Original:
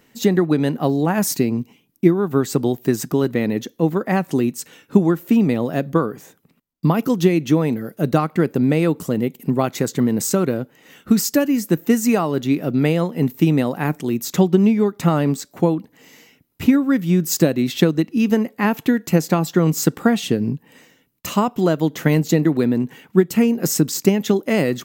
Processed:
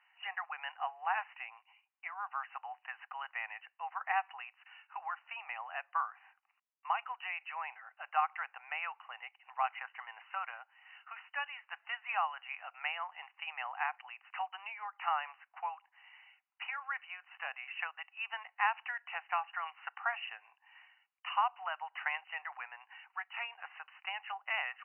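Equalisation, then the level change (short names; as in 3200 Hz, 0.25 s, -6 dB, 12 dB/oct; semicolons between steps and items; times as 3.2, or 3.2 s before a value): Chebyshev high-pass 760 Hz, order 6; brick-wall FIR low-pass 3000 Hz; -7.0 dB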